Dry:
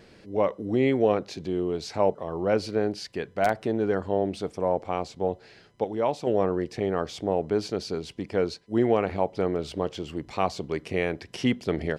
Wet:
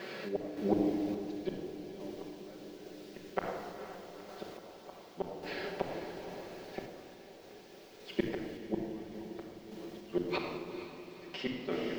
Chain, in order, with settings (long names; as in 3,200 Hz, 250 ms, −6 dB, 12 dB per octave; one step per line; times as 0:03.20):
fade-out on the ending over 1.35 s
high-pass filter 350 Hz 12 dB per octave
high-shelf EQ 2,400 Hz +5.5 dB
notch filter 5,700 Hz
gate with flip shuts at −26 dBFS, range −39 dB
background noise violet −49 dBFS
high-frequency loss of the air 240 metres
feedback delay with all-pass diffusion 471 ms, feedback 68%, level −9.5 dB
convolution reverb RT60 1.9 s, pre-delay 5 ms, DRR −2 dB
sample-and-hold tremolo
level +9.5 dB